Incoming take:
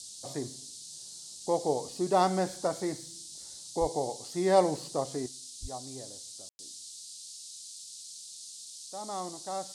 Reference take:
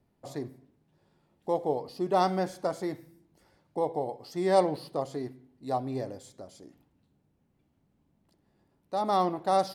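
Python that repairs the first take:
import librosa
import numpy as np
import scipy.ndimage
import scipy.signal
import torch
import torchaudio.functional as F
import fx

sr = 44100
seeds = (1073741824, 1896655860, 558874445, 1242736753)

y = fx.fix_deplosive(x, sr, at_s=(3.8, 5.61))
y = fx.fix_ambience(y, sr, seeds[0], print_start_s=7.83, print_end_s=8.33, start_s=6.49, end_s=6.59)
y = fx.noise_reduce(y, sr, print_start_s=7.83, print_end_s=8.33, reduce_db=25.0)
y = fx.gain(y, sr, db=fx.steps((0.0, 0.0), (5.26, 11.5)))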